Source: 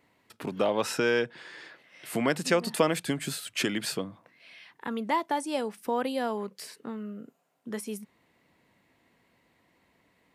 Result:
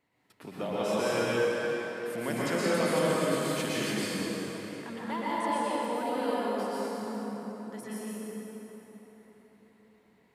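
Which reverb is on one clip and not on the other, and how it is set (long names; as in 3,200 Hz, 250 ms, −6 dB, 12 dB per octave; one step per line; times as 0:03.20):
dense smooth reverb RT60 4.4 s, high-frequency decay 0.6×, pre-delay 105 ms, DRR −9 dB
level −10 dB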